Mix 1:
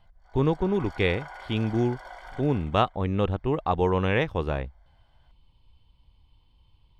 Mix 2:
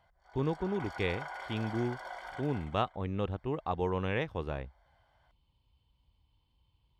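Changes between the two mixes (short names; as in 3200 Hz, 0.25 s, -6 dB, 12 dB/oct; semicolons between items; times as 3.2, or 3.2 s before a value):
speech -8.5 dB; master: add HPF 46 Hz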